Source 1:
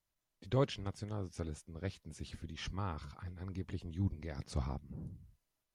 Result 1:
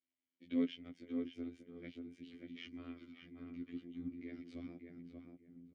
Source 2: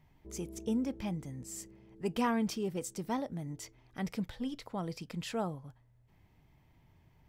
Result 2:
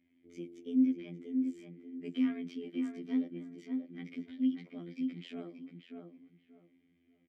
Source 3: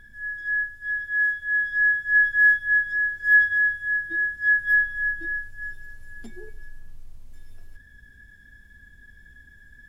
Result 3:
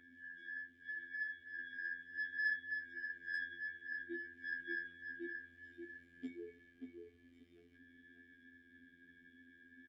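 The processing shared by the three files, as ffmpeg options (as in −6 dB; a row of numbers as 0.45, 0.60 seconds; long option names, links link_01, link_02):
-filter_complex "[0:a]equalizer=frequency=750:width=0.77:gain=13,flanger=delay=2.8:depth=4.6:regen=-45:speed=0.7:shape=sinusoidal,acontrast=71,afftfilt=real='hypot(re,im)*cos(PI*b)':imag='0':win_size=2048:overlap=0.75,asplit=3[link_01][link_02][link_03];[link_01]bandpass=frequency=270:width_type=q:width=8,volume=0dB[link_04];[link_02]bandpass=frequency=2290:width_type=q:width=8,volume=-6dB[link_05];[link_03]bandpass=frequency=3010:width_type=q:width=8,volume=-9dB[link_06];[link_04][link_05][link_06]amix=inputs=3:normalize=0,asplit=2[link_07][link_08];[link_08]adelay=583,lowpass=frequency=1800:poles=1,volume=-4.5dB,asplit=2[link_09][link_10];[link_10]adelay=583,lowpass=frequency=1800:poles=1,volume=0.23,asplit=2[link_11][link_12];[link_12]adelay=583,lowpass=frequency=1800:poles=1,volume=0.23[link_13];[link_09][link_11][link_13]amix=inputs=3:normalize=0[link_14];[link_07][link_14]amix=inputs=2:normalize=0,adynamicequalizer=threshold=0.00158:dfrequency=2400:dqfactor=0.7:tfrequency=2400:tqfactor=0.7:attack=5:release=100:ratio=0.375:range=2:mode=cutabove:tftype=highshelf,volume=3.5dB"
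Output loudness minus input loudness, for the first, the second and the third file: −4.0, +1.5, −23.0 LU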